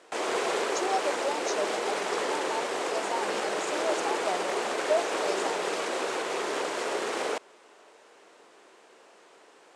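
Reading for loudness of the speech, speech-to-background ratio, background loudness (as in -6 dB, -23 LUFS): -35.0 LUFS, -5.0 dB, -30.0 LUFS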